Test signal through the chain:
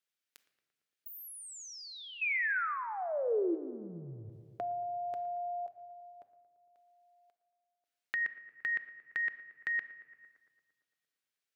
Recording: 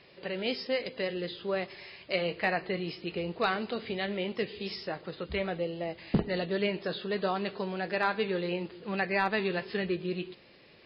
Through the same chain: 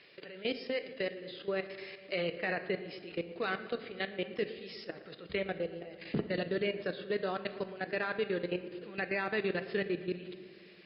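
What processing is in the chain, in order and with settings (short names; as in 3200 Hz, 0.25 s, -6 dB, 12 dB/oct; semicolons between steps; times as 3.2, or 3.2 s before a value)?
HPF 280 Hz 6 dB/oct; high shelf 4800 Hz -11 dB; level quantiser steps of 17 dB; EQ curve 440 Hz 0 dB, 920 Hz -10 dB, 1500 Hz -2 dB; darkening echo 0.114 s, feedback 73%, low-pass 2200 Hz, level -17 dB; shoebox room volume 760 m³, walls mixed, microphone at 0.42 m; mismatched tape noise reduction encoder only; gain +4 dB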